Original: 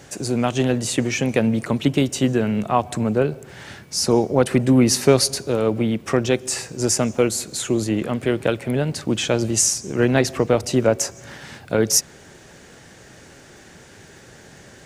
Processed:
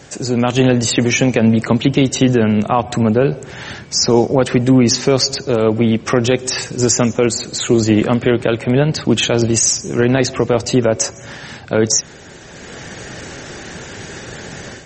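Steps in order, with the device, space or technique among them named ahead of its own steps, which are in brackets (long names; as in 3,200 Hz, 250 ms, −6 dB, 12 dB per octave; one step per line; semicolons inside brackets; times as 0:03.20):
0:06.54–0:07.19: parametric band 690 Hz −3 dB 0.55 octaves
low-bitrate web radio (automatic gain control gain up to 10 dB; brickwall limiter −6.5 dBFS, peak gain reduction 5.5 dB; level +4.5 dB; MP3 32 kbit/s 44,100 Hz)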